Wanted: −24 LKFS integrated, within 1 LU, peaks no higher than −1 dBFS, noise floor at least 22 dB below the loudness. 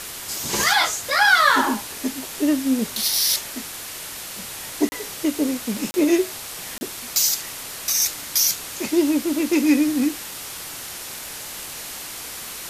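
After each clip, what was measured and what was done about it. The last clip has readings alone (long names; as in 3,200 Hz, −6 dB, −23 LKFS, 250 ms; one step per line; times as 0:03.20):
number of dropouts 3; longest dropout 30 ms; background noise floor −35 dBFS; target noise floor −44 dBFS; integrated loudness −22.0 LKFS; sample peak −4.0 dBFS; target loudness −24.0 LKFS
→ repair the gap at 0:04.89/0:05.91/0:06.78, 30 ms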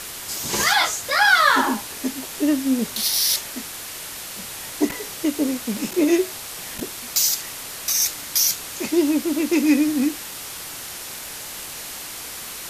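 number of dropouts 0; background noise floor −34 dBFS; target noise floor −44 dBFS
→ noise reduction from a noise print 10 dB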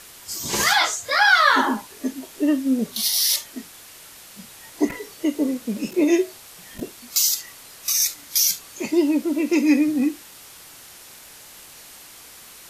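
background noise floor −44 dBFS; integrated loudness −20.5 LKFS; sample peak −4.0 dBFS; target loudness −24.0 LKFS
→ level −3.5 dB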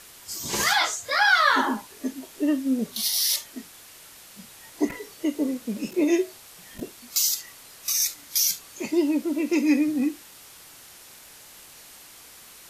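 integrated loudness −24.0 LKFS; sample peak −7.5 dBFS; background noise floor −48 dBFS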